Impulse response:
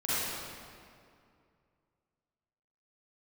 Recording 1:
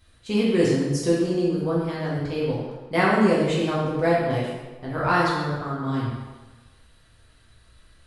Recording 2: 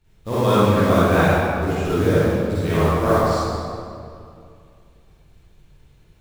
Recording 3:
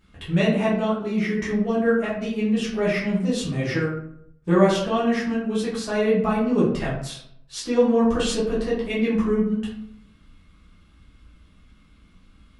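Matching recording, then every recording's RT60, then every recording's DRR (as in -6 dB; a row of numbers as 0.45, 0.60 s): 2; 1.3, 2.4, 0.70 s; -7.5, -12.0, -8.5 dB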